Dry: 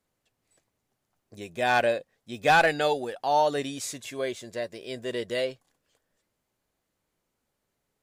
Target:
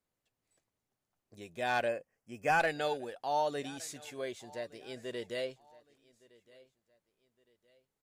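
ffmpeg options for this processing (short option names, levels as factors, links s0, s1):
-filter_complex "[0:a]asettb=1/sr,asplit=3[s0][s1][s2];[s0]atrim=end=1.884[s3];[s1]atrim=start=1.88:end=2.6,asetpts=PTS-STARTPTS,afade=t=in:d=0.004:c=qsin,afade=t=out:st=0.716:d=0.004:c=qsin,asuperstop=centerf=3800:order=4:qfactor=2[s4];[s2]atrim=start=2.596[s5];[s3][s4]acrossfade=d=0.004:c1=hsin:c2=qsin[s6];[s6][s5]acrossfade=d=0.004:c1=qsin:c2=hsin,aecho=1:1:1164|2328:0.0708|0.0255,volume=0.376"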